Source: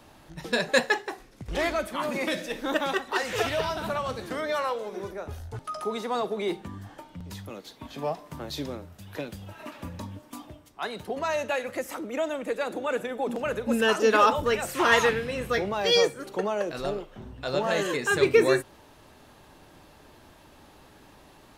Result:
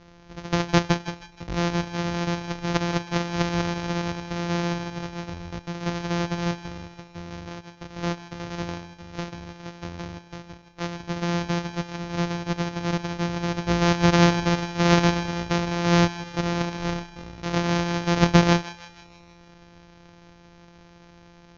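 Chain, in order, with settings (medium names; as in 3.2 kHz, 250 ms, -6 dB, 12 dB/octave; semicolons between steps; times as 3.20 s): sorted samples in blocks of 256 samples; steep low-pass 6.6 kHz 96 dB/octave; thinning echo 158 ms, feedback 57%, high-pass 800 Hz, level -14 dB; trim +2.5 dB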